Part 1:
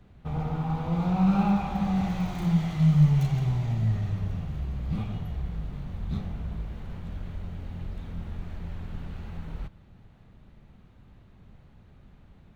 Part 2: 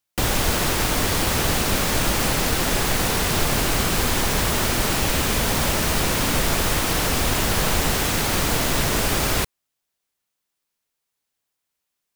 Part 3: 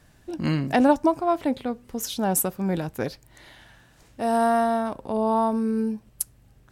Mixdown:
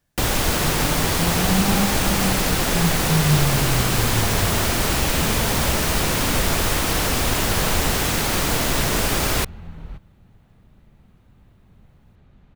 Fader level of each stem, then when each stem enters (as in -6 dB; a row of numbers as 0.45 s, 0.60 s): +0.5 dB, +0.5 dB, -16.5 dB; 0.30 s, 0.00 s, 0.00 s